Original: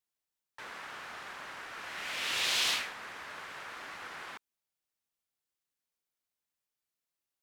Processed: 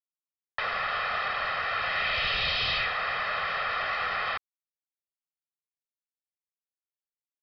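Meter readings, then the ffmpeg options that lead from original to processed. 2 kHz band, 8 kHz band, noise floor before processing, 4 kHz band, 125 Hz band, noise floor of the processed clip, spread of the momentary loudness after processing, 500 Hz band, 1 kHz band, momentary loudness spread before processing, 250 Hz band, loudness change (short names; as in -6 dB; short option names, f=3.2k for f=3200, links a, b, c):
+10.0 dB, under -15 dB, under -85 dBFS, +4.0 dB, +16.0 dB, under -85 dBFS, 6 LU, +12.0 dB, +13.0 dB, 17 LU, +4.0 dB, +7.0 dB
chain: -filter_complex "[0:a]acontrast=26,asplit=2[a][b];[b]highpass=f=720:p=1,volume=25dB,asoftclip=type=tanh:threshold=-11.5dB[c];[a][c]amix=inputs=2:normalize=0,lowpass=f=3.1k:p=1,volume=-6dB,acrossover=split=130[d][e];[e]acompressor=threshold=-31dB:ratio=2.5[f];[d][f]amix=inputs=2:normalize=0,aresample=11025,aeval=exprs='sgn(val(0))*max(abs(val(0))-0.00398,0)':c=same,aresample=44100,aecho=1:1:1.6:0.71"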